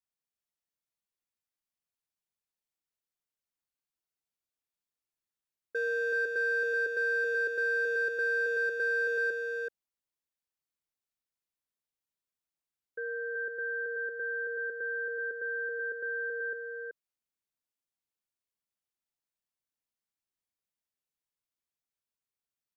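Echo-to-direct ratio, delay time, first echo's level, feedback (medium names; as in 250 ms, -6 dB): -4.0 dB, 379 ms, -4.0 dB, no regular repeats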